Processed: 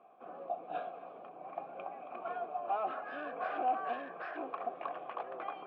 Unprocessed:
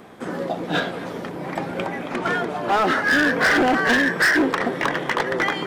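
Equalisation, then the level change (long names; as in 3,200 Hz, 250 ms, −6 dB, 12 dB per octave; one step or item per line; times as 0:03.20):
formant filter a
low-pass filter 5,600 Hz
high-frequency loss of the air 340 metres
−5.5 dB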